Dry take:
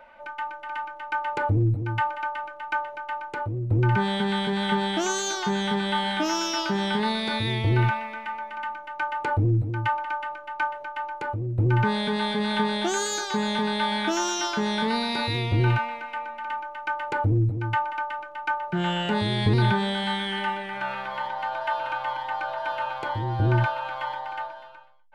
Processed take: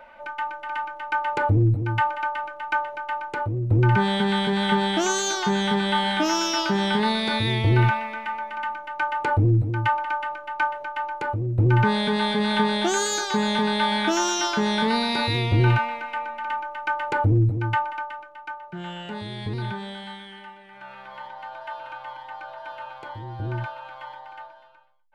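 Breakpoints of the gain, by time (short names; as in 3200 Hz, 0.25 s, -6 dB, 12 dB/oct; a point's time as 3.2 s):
17.66 s +3 dB
18.55 s -9 dB
19.93 s -9 dB
20.55 s -16 dB
21.14 s -8 dB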